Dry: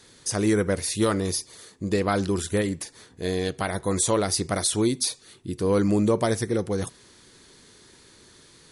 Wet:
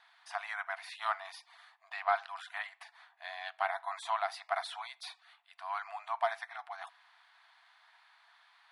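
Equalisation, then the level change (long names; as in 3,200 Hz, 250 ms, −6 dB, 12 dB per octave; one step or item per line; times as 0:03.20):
linear-phase brick-wall high-pass 650 Hz
high-frequency loss of the air 460 metres
0.0 dB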